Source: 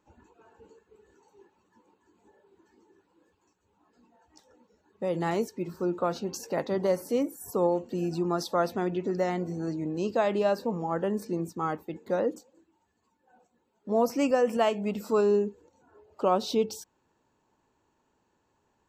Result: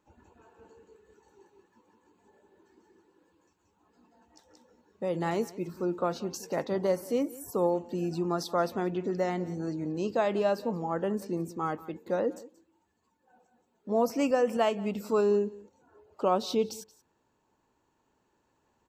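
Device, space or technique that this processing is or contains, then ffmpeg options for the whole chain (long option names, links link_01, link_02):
ducked delay: -filter_complex "[0:a]asplit=3[link_01][link_02][link_03];[link_02]adelay=179,volume=-3dB[link_04];[link_03]apad=whole_len=840842[link_05];[link_04][link_05]sidechaincompress=threshold=-41dB:ratio=6:attack=16:release=1360[link_06];[link_01][link_06]amix=inputs=2:normalize=0,volume=-1.5dB"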